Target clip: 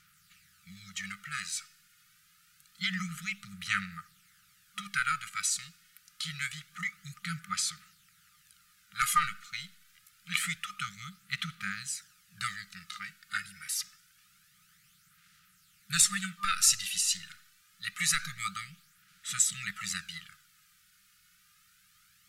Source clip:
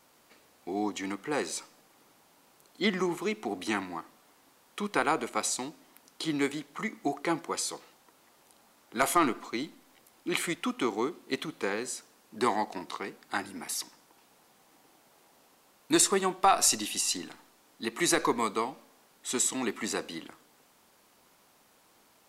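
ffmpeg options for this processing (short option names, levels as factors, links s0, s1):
-af "afftfilt=real='re*(1-between(b*sr/4096,200,1200))':imag='im*(1-between(b*sr/4096,200,1200))':win_size=4096:overlap=0.75,aphaser=in_gain=1:out_gain=1:delay=2.8:decay=0.43:speed=0.26:type=sinusoidal" -ar 48000 -c:a sbc -b:a 192k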